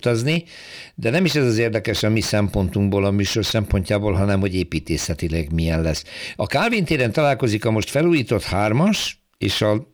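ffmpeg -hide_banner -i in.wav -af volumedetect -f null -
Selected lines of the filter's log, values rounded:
mean_volume: -19.9 dB
max_volume: -5.8 dB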